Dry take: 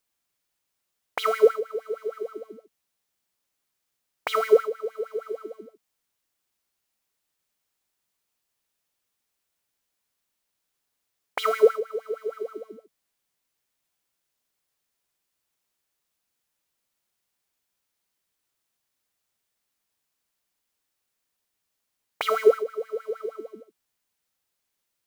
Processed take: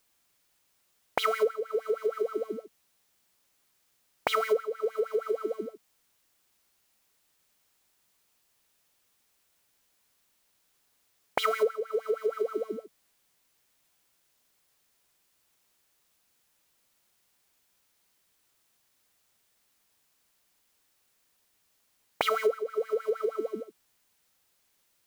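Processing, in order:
downward compressor 5 to 1, threshold −34 dBFS, peak gain reduction 20 dB
level +8.5 dB

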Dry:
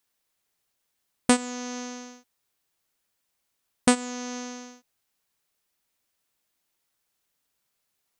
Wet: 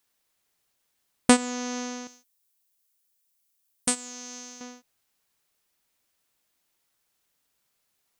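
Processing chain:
0:02.07–0:04.61: first-order pre-emphasis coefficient 0.8
level +2.5 dB

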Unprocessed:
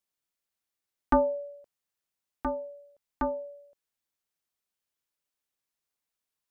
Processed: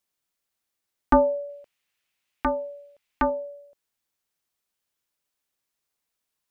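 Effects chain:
0:01.49–0:03.30: parametric band 2,500 Hz +12 dB 1.3 octaves
level +5 dB

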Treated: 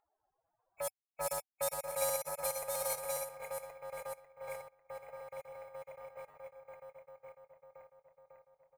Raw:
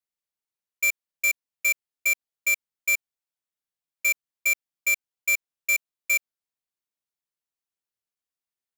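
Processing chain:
feedback delay that plays each chunk backwards 266 ms, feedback 62%, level −3 dB
source passing by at 0:01.84, 11 m/s, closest 8.8 metres
on a send: single-tap delay 1,073 ms −6 dB
on the sum: gate on every frequency bin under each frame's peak −20 dB weak
in parallel at −2 dB: brickwall limiter −27.5 dBFS, peak gain reduction 7.5 dB
on the sum: drawn EQ curve 100 Hz 0 dB, 240 Hz −15 dB, 760 Hz +12 dB, 3,100 Hz −30 dB, 6,000 Hz −29 dB, 12,000 Hz −7 dB
low-pass that shuts in the quiet parts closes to 1,200 Hz, open at −37.5 dBFS
upward compression, threshold −54 dBFS
flat-topped bell 4,200 Hz +8 dB 3 octaves
bad sample-rate conversion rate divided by 2×, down none, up hold
level +4.5 dB

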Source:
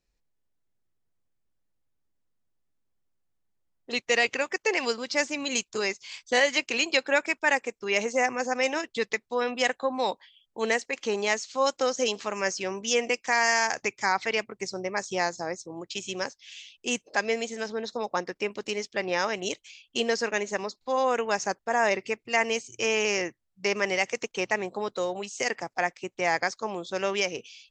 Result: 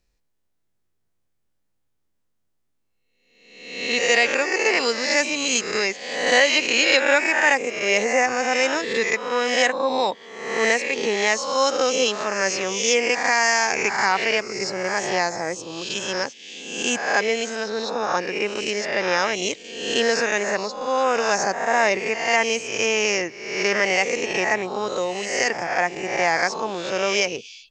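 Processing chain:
peak hold with a rise ahead of every peak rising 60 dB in 0.91 s
level +3.5 dB

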